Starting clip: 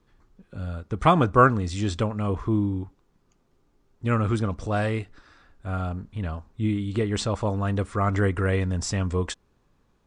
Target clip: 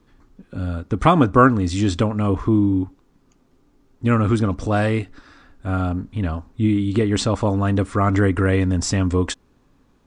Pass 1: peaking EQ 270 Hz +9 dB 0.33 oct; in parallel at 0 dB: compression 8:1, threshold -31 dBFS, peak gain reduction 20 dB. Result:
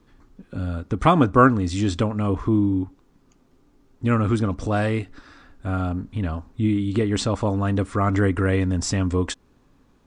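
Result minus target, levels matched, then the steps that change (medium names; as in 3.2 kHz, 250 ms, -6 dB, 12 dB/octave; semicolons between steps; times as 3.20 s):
compression: peak gain reduction +9 dB
change: compression 8:1, threshold -20.5 dBFS, peak gain reduction 10.5 dB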